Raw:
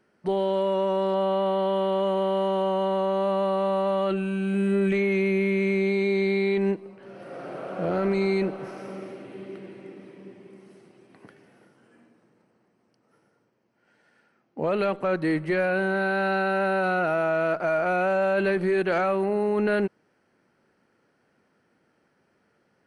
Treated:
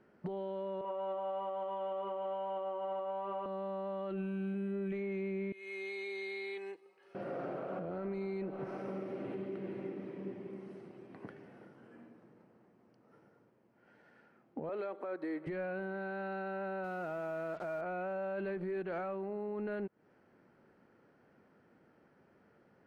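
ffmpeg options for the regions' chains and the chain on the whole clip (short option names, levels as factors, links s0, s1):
-filter_complex "[0:a]asettb=1/sr,asplit=3[s0][s1][s2];[s0]atrim=end=0.814[s3];[s1]atrim=start=0.81:end=3.46,asetpts=PTS-STARTPTS,afade=t=in:d=0.004:c=qsin,afade=t=out:st=2.646:d=0.004:c=qsin,highpass=f=310:w=0.5412,highpass=f=310:w=1.3066,equalizer=f=390:t=q:w=4:g=-4,equalizer=f=630:t=q:w=4:g=-7,equalizer=f=1700:t=q:w=4:g=-8,lowpass=f=2800:w=0.5412,lowpass=f=2800:w=1.3066,asplit=2[s4][s5];[s5]adelay=35,volume=0.668[s6];[s4][s6]amix=inputs=2:normalize=0,atrim=end_sample=116865[s7];[s2]atrim=start=3.456[s8];[s3][s7]acrossfade=d=0.004:c1=hsin:c2=qsin[s9];[s9][s8]acrossfade=d=0.004:c1=qsin:c2=hsin,asettb=1/sr,asplit=3[s10][s11][s12];[s10]atrim=end=5.524[s13];[s11]atrim=start=5.52:end=7.15,asetpts=PTS-STARTPTS,afade=t=in:d=0.004:c=qsin,afade=t=out:st=1.626:d=0.004:c=qsin,aderivative,aecho=1:1:2.4:0.73,atrim=end_sample=71883[s14];[s12]atrim=start=7.146[s15];[s13][s14]acrossfade=d=0.004:c1=hsin:c2=qsin[s16];[s16][s15]acrossfade=d=0.004:c1=qsin:c2=hsin,asettb=1/sr,asplit=3[s17][s18][s19];[s17]atrim=end=14.694[s20];[s18]atrim=start=14.69:end=15.47,asetpts=PTS-STARTPTS,afade=t=in:d=0.004:c=qsin,afade=t=out:st=0.776:d=0.004:c=qsin,highpass=f=290:w=0.5412,highpass=f=290:w=1.3066,bandreject=f=2800:w=7.2[s21];[s19]atrim=start=15.466[s22];[s20][s21]acrossfade=d=0.004:c1=hsin:c2=qsin[s23];[s23][s22]acrossfade=d=0.004:c1=qsin:c2=hsin,asettb=1/sr,asplit=3[s24][s25][s26];[s24]atrim=end=16.844[s27];[s25]atrim=start=16.84:end=17.81,asetpts=PTS-STARTPTS,afade=t=in:d=0.004:c=qsin,afade=t=out:st=0.966:d=0.004:c=qsin,highpass=47,acrusher=bits=5:mix=0:aa=0.5[s28];[s26]atrim=start=17.806[s29];[s27][s28]acrossfade=d=0.004:c1=hsin:c2=qsin[s30];[s30][s29]acrossfade=d=0.004:c1=qsin:c2=hsin,lowpass=f=1300:p=1,acompressor=threshold=0.0251:ratio=5,alimiter=level_in=3.16:limit=0.0631:level=0:latency=1:release=292,volume=0.316,volume=1.33"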